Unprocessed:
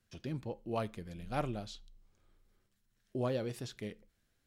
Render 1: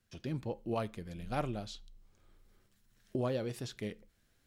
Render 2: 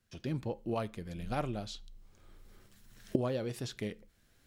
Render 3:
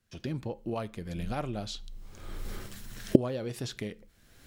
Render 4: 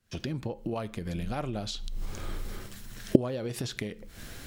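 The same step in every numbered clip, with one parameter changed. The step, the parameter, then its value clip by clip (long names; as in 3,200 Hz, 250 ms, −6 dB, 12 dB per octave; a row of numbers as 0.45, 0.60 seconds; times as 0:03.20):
camcorder AGC, rising by: 5.2, 13, 33, 90 dB per second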